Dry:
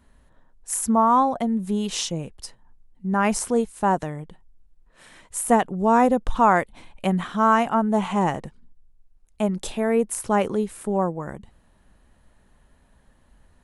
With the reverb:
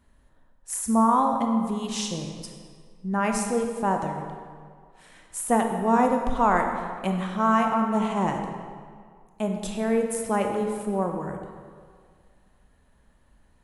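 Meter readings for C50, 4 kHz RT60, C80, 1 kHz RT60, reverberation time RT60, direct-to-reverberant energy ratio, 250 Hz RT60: 4.5 dB, 1.4 s, 6.0 dB, 2.0 s, 2.0 s, 3.5 dB, 1.9 s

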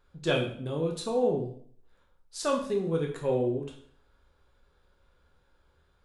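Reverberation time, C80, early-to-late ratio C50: 0.60 s, 11.0 dB, 7.0 dB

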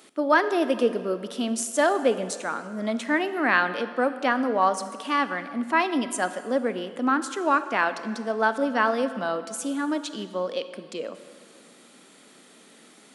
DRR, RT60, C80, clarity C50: 11.5 dB, 2.0 s, 13.0 dB, 12.0 dB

